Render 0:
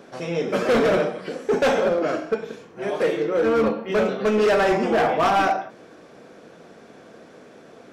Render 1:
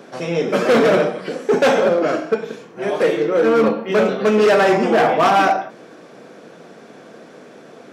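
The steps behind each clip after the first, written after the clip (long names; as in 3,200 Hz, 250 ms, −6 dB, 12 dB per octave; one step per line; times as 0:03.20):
high-pass filter 120 Hz 24 dB per octave
level +5 dB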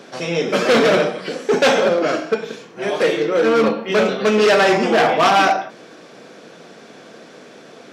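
parametric band 4,300 Hz +7.5 dB 2.2 octaves
level −1 dB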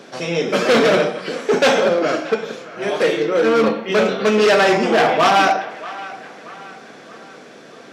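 feedback echo with a band-pass in the loop 628 ms, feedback 54%, band-pass 1,500 Hz, level −15 dB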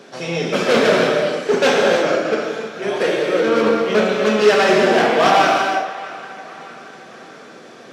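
reverb whose tail is shaped and stops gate 360 ms flat, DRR 0 dB
level −2.5 dB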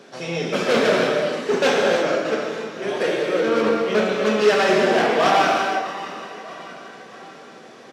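repeating echo 627 ms, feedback 46%, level −15.5 dB
level −3.5 dB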